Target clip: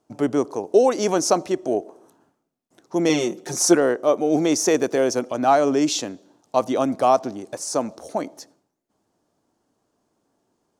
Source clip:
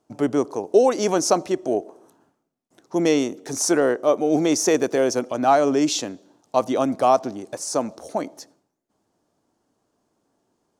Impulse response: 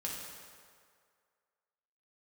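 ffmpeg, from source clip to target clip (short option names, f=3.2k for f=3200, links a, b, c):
-filter_complex "[0:a]asettb=1/sr,asplit=3[a][b][c];[a]atrim=end=3.094[d];[b]atrim=start=3.09:end=3.75,asetpts=PTS-STARTPTS,afade=t=in:d=0.004:c=qsin,afade=t=out:st=0.656:d=0.004:c=qsin,aecho=1:1:5.6:0.97,atrim=end_sample=29106[e];[c]atrim=start=3.746[f];[d][e]acrossfade=d=0.004:c1=hsin:c2=qsin[g];[g][f]acrossfade=d=0.004:c1=qsin:c2=hsin"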